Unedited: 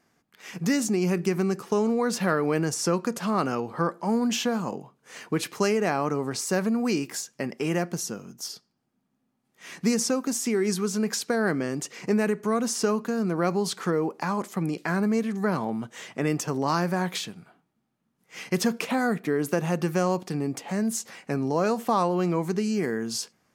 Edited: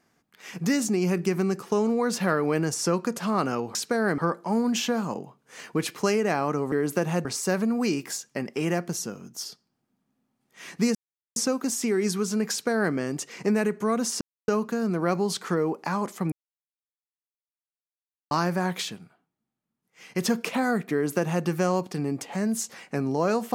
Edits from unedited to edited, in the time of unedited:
0:09.99: splice in silence 0.41 s
0:11.14–0:11.57: duplicate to 0:03.75
0:12.84: splice in silence 0.27 s
0:14.68–0:16.67: silence
0:17.33–0:18.61: duck −9 dB, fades 0.18 s
0:19.28–0:19.81: duplicate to 0:06.29

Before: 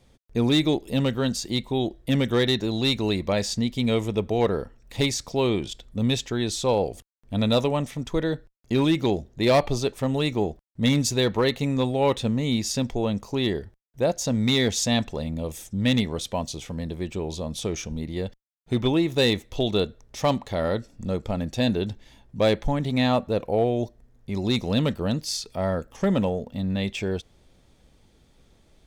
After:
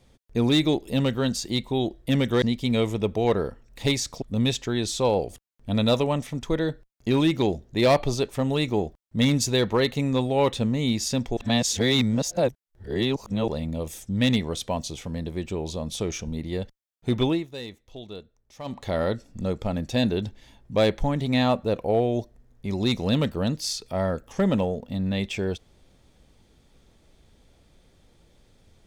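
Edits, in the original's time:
0:02.42–0:03.56: remove
0:05.36–0:05.86: remove
0:13.01–0:15.12: reverse
0:18.91–0:20.49: duck −16 dB, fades 0.21 s

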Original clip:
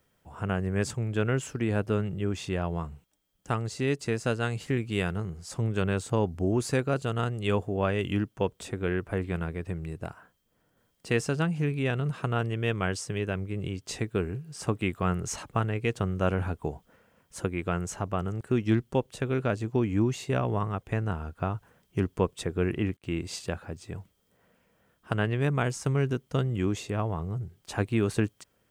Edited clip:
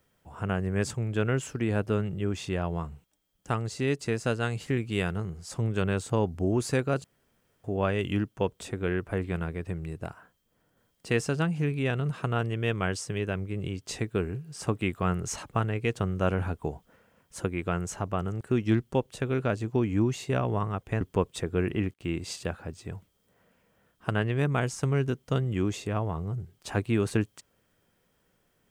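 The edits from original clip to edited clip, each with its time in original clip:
0:07.04–0:07.64: fill with room tone
0:21.01–0:22.04: remove

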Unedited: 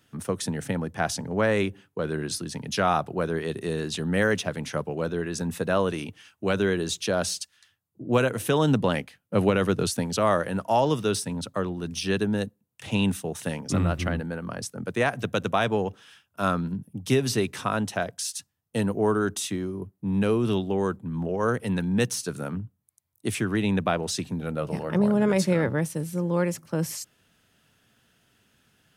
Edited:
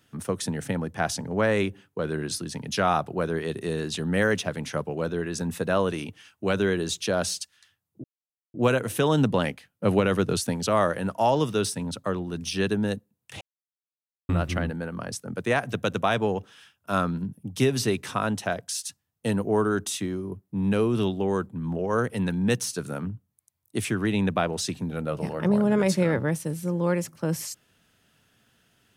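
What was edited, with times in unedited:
0:08.04: splice in silence 0.50 s
0:12.91–0:13.79: silence

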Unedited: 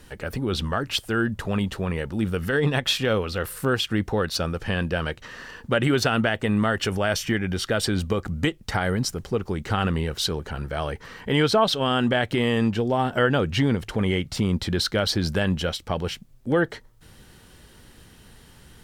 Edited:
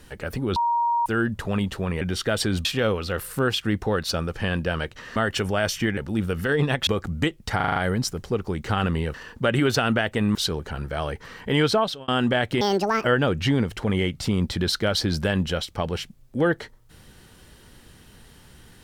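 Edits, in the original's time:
0:00.56–0:01.06: beep over 942 Hz −19 dBFS
0:02.01–0:02.91: swap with 0:07.44–0:08.08
0:05.42–0:06.63: move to 0:10.15
0:08.77: stutter 0.04 s, 6 plays
0:11.51–0:11.88: fade out
0:12.41–0:13.16: play speed 173%

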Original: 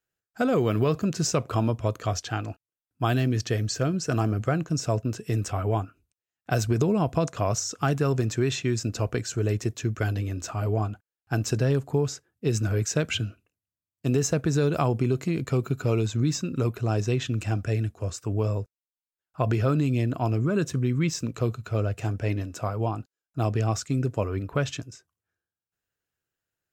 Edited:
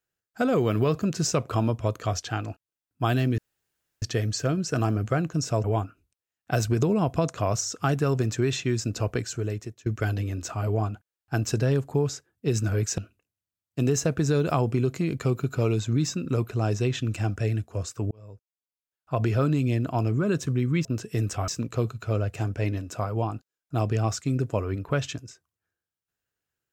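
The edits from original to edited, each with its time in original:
0:03.38: splice in room tone 0.64 s
0:05.00–0:05.63: move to 0:21.12
0:09.19–0:09.85: fade out, to −21.5 dB
0:12.97–0:13.25: remove
0:18.38–0:19.57: fade in

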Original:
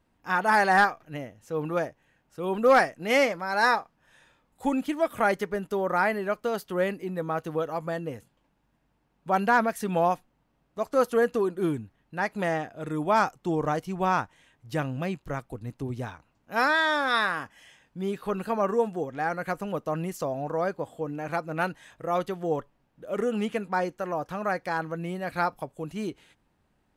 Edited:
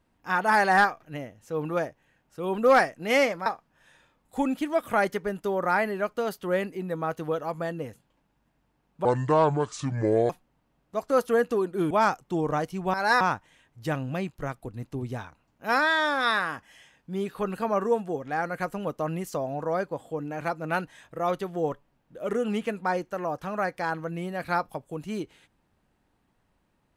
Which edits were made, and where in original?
0:03.46–0:03.73: move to 0:14.08
0:09.32–0:10.13: play speed 65%
0:11.74–0:13.05: remove

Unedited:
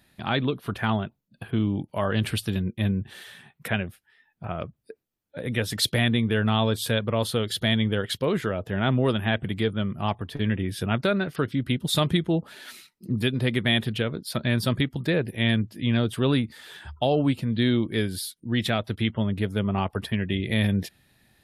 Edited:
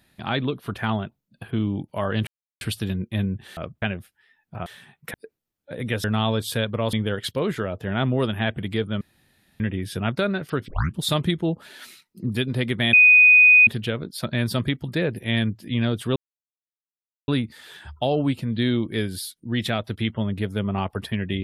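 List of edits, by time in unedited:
0:02.27: splice in silence 0.34 s
0:03.23–0:03.71: swap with 0:04.55–0:04.80
0:05.70–0:06.38: remove
0:07.27–0:07.79: remove
0:09.87–0:10.46: fill with room tone
0:11.54: tape start 0.29 s
0:13.79: insert tone 2,490 Hz −9 dBFS 0.74 s
0:16.28: splice in silence 1.12 s

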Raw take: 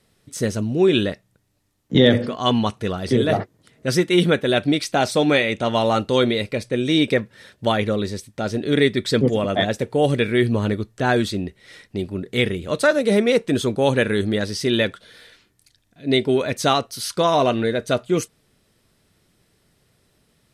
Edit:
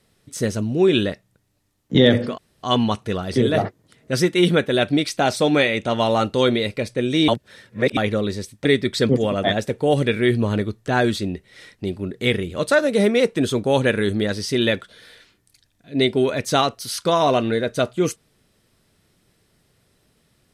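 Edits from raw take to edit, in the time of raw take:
0:02.38: splice in room tone 0.25 s
0:07.03–0:07.72: reverse
0:08.40–0:08.77: remove

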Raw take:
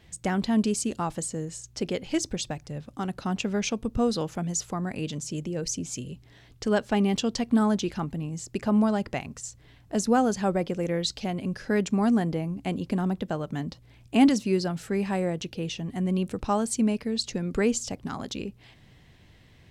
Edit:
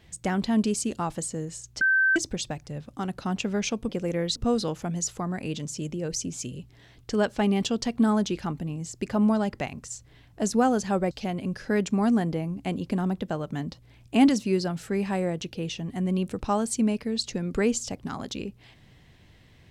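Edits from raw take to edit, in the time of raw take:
0:01.81–0:02.16: beep over 1,550 Hz −18 dBFS
0:10.64–0:11.11: move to 0:03.89

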